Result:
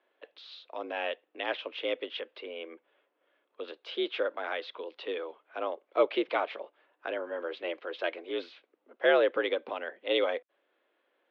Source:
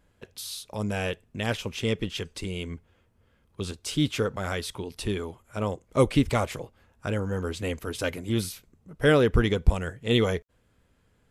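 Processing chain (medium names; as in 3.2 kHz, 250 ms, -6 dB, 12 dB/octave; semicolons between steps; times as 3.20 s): 2.17–3.68 s: low-pass that closes with the level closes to 2.6 kHz, closed at -31 dBFS; mistuned SSB +71 Hz 300–3600 Hz; trim -2.5 dB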